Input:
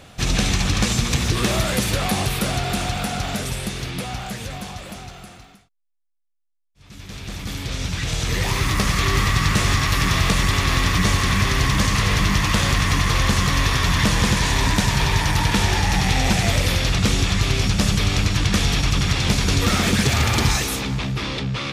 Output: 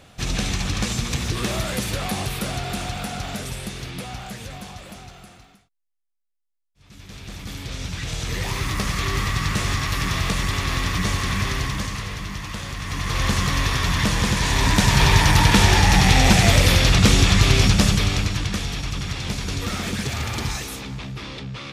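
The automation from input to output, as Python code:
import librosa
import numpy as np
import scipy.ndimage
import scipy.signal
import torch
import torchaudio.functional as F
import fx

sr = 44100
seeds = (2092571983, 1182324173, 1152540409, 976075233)

y = fx.gain(x, sr, db=fx.line((11.5, -4.5), (12.18, -12.5), (12.76, -12.5), (13.25, -2.5), (14.33, -2.5), (15.06, 4.0), (17.66, 4.0), (18.67, -8.0)))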